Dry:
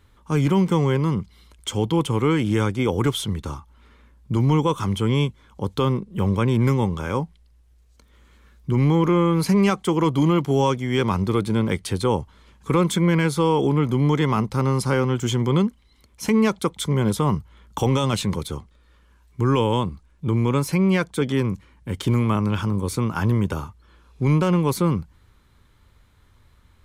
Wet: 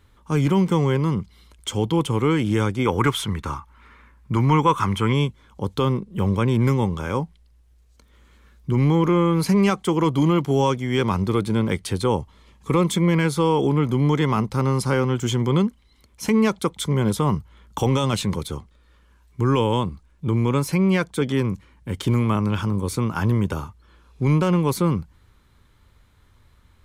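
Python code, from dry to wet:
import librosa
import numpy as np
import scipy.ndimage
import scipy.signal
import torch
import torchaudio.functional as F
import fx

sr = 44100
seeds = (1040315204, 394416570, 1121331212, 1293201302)

y = fx.band_shelf(x, sr, hz=1500.0, db=8.0, octaves=1.7, at=(2.85, 5.13))
y = fx.notch(y, sr, hz=1500.0, q=5.9, at=(12.19, 13.16))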